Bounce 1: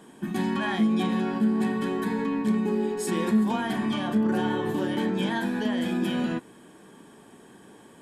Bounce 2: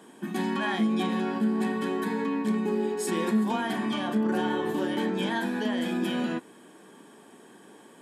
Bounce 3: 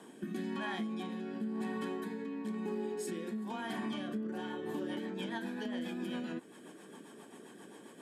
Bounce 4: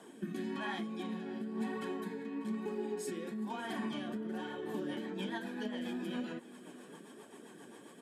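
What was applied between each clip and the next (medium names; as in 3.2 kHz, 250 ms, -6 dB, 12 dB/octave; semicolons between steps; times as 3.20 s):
high-pass 210 Hz 12 dB/octave
compression 5:1, threshold -36 dBFS, peak gain reduction 14 dB; rotary cabinet horn 1 Hz, later 7.5 Hz, at 4.18 s; trim +1 dB
flange 1.1 Hz, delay 1.3 ms, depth 7.5 ms, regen +50%; delay 593 ms -18.5 dB; trim +3.5 dB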